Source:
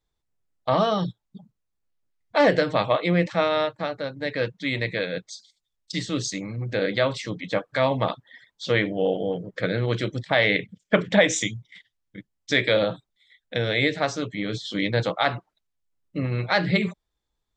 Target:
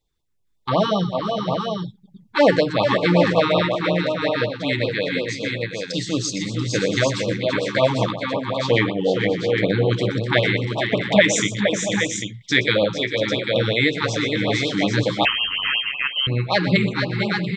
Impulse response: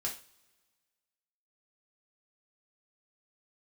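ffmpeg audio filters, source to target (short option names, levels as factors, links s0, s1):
-filter_complex "[0:a]asettb=1/sr,asplit=3[s0][s1][s2];[s0]atrim=end=10.394[s3];[s1]atrim=start=10.39:end=11.16,asetpts=PTS-STARTPTS,afade=t=in:d=0.004:c=qsin,afade=t=out:st=0.766:d=0.004:c=qsin,acompressor=threshold=0.0891:ratio=6[s4];[s2]atrim=start=11.156[s5];[s3][s4]acrossfade=d=0.004:c1=hsin:c2=qsin[s6];[s6][s5]acrossfade=d=0.004:c1=qsin:c2=hsin,asplit=2[s7][s8];[s8]aecho=0:1:122|444|463|586|686|796:0.237|0.282|0.473|0.126|0.237|0.531[s9];[s7][s9]amix=inputs=2:normalize=0,asettb=1/sr,asplit=3[s10][s11][s12];[s10]atrim=end=15.254[s13];[s11]atrim=start=15.25:end=16.27,asetpts=PTS-STARTPTS,afade=t=in:d=0.004:c=qsin,afade=t=out:st=1.016:d=0.004:c=qsin,lowpass=f=2800:t=q:w=0.5098,lowpass=f=2800:t=q:w=0.6013,lowpass=f=2800:t=q:w=0.9,lowpass=f=2800:t=q:w=2.563,afreqshift=-3300[s14];[s12]atrim=start=16.266[s15];[s13][s14]acrossfade=d=0.004:c1=hsin:c2=qsin[s16];[s16][s15]acrossfade=d=0.004:c1=qsin:c2=hsin,afftfilt=real='re*(1-between(b*sr/1024,560*pow(1800/560,0.5+0.5*sin(2*PI*5.4*pts/sr))/1.41,560*pow(1800/560,0.5+0.5*sin(2*PI*5.4*pts/sr))*1.41))':imag='im*(1-between(b*sr/1024,560*pow(1800/560,0.5+0.5*sin(2*PI*5.4*pts/sr))/1.41,560*pow(1800/560,0.5+0.5*sin(2*PI*5.4*pts/sr))*1.41))':win_size=1024:overlap=0.75,volume=1.58"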